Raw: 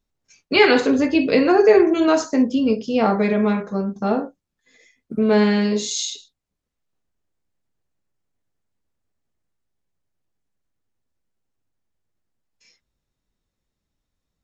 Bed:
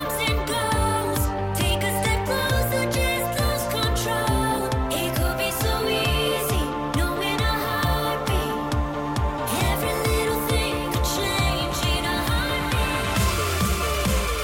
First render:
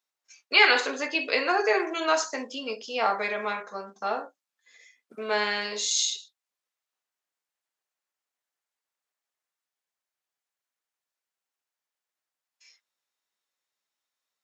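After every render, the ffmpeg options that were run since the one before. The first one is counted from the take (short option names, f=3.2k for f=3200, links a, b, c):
-af "highpass=900"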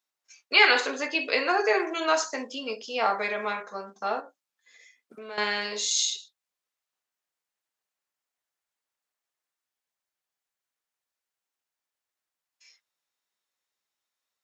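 -filter_complex "[0:a]asettb=1/sr,asplit=3[a][b][c];[a]atrim=end=4.204[d];[b]atrim=start=4.2:end=5.38,asetpts=PTS-STARTPTS,afade=t=in:d=0.004:c=qsin,afade=t=out:st=1.176:d=0.004:c=qsin,acompressor=threshold=-42dB:ratio=2.5:attack=3.2:release=140:knee=1:detection=peak[e];[c]atrim=start=5.376[f];[d][e]acrossfade=d=0.004:c1=hsin:c2=qsin[g];[g][f]acrossfade=d=0.004:c1=qsin:c2=hsin"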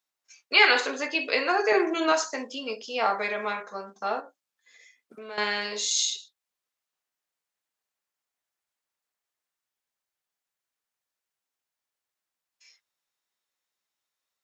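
-filter_complex "[0:a]asettb=1/sr,asplit=3[a][b][c];[a]atrim=end=1.724[d];[b]atrim=start=1.72:end=2.12,asetpts=PTS-STARTPTS,afade=t=in:d=0.004:c=qsin,afade=t=out:st=0.396:d=0.004:c=qsin,equalizer=f=210:t=o:w=1.4:g=12[e];[c]atrim=start=2.116[f];[d][e]acrossfade=d=0.004:c1=hsin:c2=qsin[g];[g][f]acrossfade=d=0.004:c1=qsin:c2=hsin"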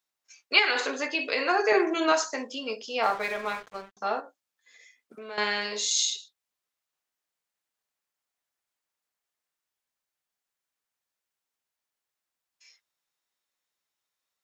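-filter_complex "[0:a]asettb=1/sr,asplit=3[a][b][c];[a]atrim=end=0.594[d];[b]atrim=start=0.59:end=1.42,asetpts=PTS-STARTPTS,afade=t=in:d=0.004:c=qsin,afade=t=out:st=0.826:d=0.004:c=qsin,acompressor=threshold=-22dB:ratio=3:attack=3.2:release=140:knee=1:detection=peak[e];[c]atrim=start=1.416[f];[d][e]acrossfade=d=0.004:c1=hsin:c2=qsin[g];[g][f]acrossfade=d=0.004:c1=qsin:c2=hsin,asettb=1/sr,asplit=3[h][i][j];[h]atrim=end=3.034[k];[i]atrim=start=3.03:end=3.97,asetpts=PTS-STARTPTS,afade=t=in:d=0.004:c=qsin,afade=t=out:st=0.936:d=0.004:c=qsin,aeval=exprs='sgn(val(0))*max(abs(val(0))-0.00668,0)':c=same[l];[j]atrim=start=3.966[m];[k][l]acrossfade=d=0.004:c1=hsin:c2=qsin[n];[n][m]acrossfade=d=0.004:c1=qsin:c2=hsin"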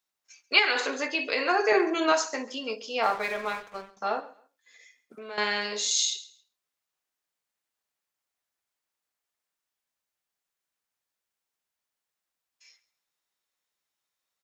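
-af "aecho=1:1:136|272:0.1|0.024"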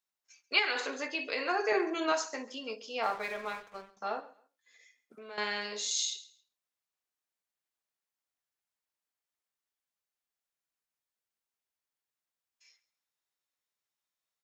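-af "volume=-6.5dB"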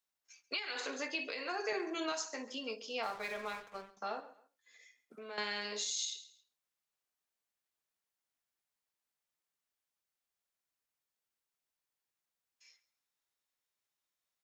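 -filter_complex "[0:a]acrossover=split=170|3000[a][b][c];[b]acompressor=threshold=-40dB:ratio=2[d];[a][d][c]amix=inputs=3:normalize=0,alimiter=level_in=2dB:limit=-24dB:level=0:latency=1:release=336,volume=-2dB"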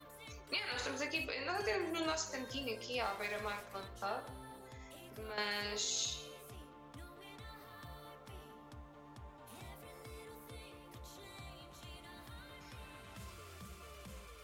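-filter_complex "[1:a]volume=-29.5dB[a];[0:a][a]amix=inputs=2:normalize=0"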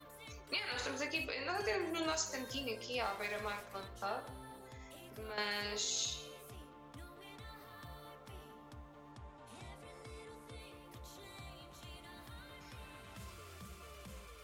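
-filter_complex "[0:a]asettb=1/sr,asplit=3[a][b][c];[a]atrim=end=2.124[d];[b]atrim=start=2.12:end=2.62,asetpts=PTS-STARTPTS,afade=t=in:d=0.004:c=qsin,afade=t=out:st=0.496:d=0.004:c=qsin,highshelf=f=7.6k:g=8.5[e];[c]atrim=start=2.616[f];[d][e]acrossfade=d=0.004:c1=hsin:c2=qsin[g];[g][f]acrossfade=d=0.004:c1=qsin:c2=hsin,asettb=1/sr,asplit=3[h][i][j];[h]atrim=end=9.124[k];[i]atrim=start=9.12:end=10.6,asetpts=PTS-STARTPTS,afade=t=in:d=0.004:c=qsin,afade=t=out:st=1.476:d=0.004:c=qsin,lowpass=f=9.9k:w=0.5412,lowpass=f=9.9k:w=1.3066[l];[j]atrim=start=10.596[m];[k][l]acrossfade=d=0.004:c1=hsin:c2=qsin[n];[n][m]acrossfade=d=0.004:c1=qsin:c2=hsin"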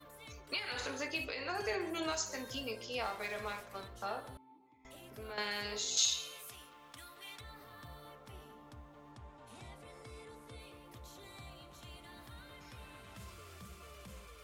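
-filter_complex "[0:a]asettb=1/sr,asplit=3[a][b][c];[a]atrim=end=4.374[d];[b]atrim=start=4.37:end=4.85,asetpts=PTS-STARTPTS,afade=t=in:d=0.004:c=qsin,afade=t=out:st=0.476:d=0.004:c=qsin,asplit=3[e][f][g];[e]bandpass=f=300:t=q:w=8,volume=0dB[h];[f]bandpass=f=870:t=q:w=8,volume=-6dB[i];[g]bandpass=f=2.24k:t=q:w=8,volume=-9dB[j];[h][i][j]amix=inputs=3:normalize=0[k];[c]atrim=start=4.846[l];[d][k]acrossfade=d=0.004:c1=hsin:c2=qsin[m];[m][l]acrossfade=d=0.004:c1=qsin:c2=hsin,asettb=1/sr,asplit=3[n][o][p];[n]atrim=end=5.974[q];[o]atrim=start=5.97:end=7.41,asetpts=PTS-STARTPTS,afade=t=in:d=0.004:c=qsin,afade=t=out:st=1.436:d=0.004:c=qsin,tiltshelf=f=880:g=-9[r];[p]atrim=start=7.406[s];[q][r]acrossfade=d=0.004:c1=hsin:c2=qsin[t];[t][s]acrossfade=d=0.004:c1=qsin:c2=hsin"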